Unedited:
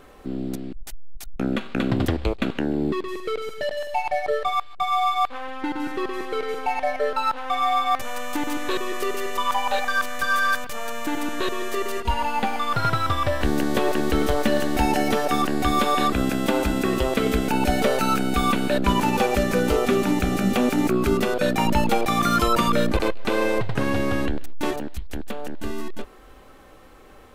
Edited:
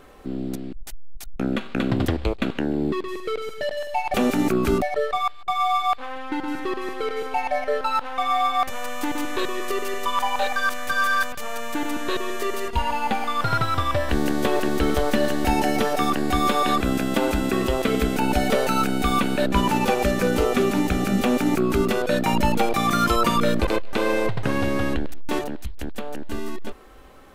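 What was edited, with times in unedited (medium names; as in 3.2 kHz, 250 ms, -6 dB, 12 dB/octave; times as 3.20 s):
20.53–21.21 s: copy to 4.14 s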